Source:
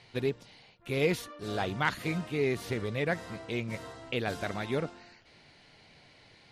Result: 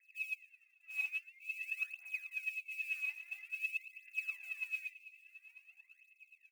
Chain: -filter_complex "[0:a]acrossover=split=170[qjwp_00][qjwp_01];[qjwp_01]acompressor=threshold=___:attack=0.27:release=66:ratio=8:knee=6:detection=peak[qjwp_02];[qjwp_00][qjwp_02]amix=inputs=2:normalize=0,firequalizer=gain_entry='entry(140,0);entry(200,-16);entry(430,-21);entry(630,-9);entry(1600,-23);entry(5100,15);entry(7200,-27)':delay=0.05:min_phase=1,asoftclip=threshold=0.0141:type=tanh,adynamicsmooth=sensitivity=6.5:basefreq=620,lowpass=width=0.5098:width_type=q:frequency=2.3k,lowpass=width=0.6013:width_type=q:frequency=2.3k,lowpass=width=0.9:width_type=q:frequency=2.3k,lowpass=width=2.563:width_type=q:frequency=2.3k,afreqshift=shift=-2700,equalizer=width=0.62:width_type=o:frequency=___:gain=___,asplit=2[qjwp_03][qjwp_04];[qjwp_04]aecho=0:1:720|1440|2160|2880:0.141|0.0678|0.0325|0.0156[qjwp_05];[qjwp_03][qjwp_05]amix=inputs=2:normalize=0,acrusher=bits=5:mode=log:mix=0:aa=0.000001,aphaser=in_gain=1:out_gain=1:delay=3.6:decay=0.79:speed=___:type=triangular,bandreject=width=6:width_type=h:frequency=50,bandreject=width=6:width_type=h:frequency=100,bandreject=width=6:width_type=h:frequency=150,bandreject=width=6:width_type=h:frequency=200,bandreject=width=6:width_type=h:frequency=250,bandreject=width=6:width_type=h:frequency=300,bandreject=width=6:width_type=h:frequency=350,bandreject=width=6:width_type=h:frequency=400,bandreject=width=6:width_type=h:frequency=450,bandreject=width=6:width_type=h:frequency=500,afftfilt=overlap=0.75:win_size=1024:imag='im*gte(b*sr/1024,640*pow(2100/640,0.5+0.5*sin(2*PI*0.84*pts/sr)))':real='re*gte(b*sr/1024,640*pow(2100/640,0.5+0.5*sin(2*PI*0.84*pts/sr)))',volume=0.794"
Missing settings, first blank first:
0.0112, 200, 13.5, 0.49